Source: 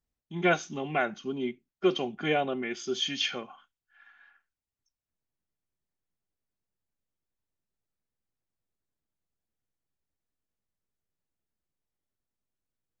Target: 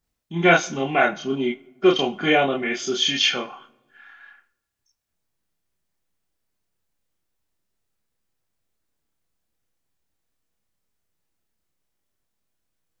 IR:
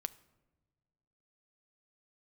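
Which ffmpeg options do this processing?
-filter_complex "[0:a]asplit=2[a][b];[1:a]atrim=start_sample=2205,lowshelf=f=360:g=-11,adelay=30[c];[b][c]afir=irnorm=-1:irlink=0,volume=3dB[d];[a][d]amix=inputs=2:normalize=0,volume=7dB"

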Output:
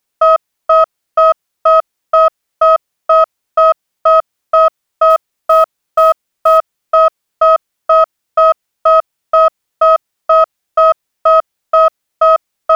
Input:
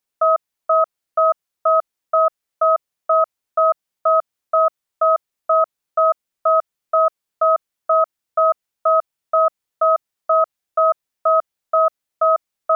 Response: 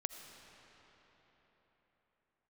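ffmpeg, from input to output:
-filter_complex "[0:a]asplit=2[a][b];[b]asoftclip=type=tanh:threshold=-18dB,volume=-7dB[c];[a][c]amix=inputs=2:normalize=0,asettb=1/sr,asplit=3[d][e][f];[d]atrim=end=5.104[g];[e]atrim=start=5.1:end=6.58,asetpts=PTS-STARTPTS,afade=t=in:d=0.004:c=qsin,afade=t=out:st=1.476:d=0.004:c=qsin,acrusher=bits=8:mode=log:mix=0:aa=0.000001[h];[f]atrim=start=6.576[i];[g][h]acrossfade=d=0.004:c1=hsin:c2=qsin[j];[j][i]acrossfade=d=0.004:c1=qsin:c2=hsin,volume=5.5dB"

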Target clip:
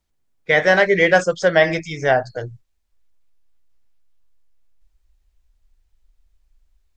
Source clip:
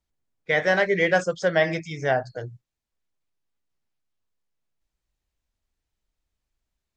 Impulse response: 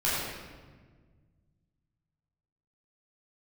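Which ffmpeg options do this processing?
-af "asubboost=boost=9:cutoff=53,volume=6.5dB"

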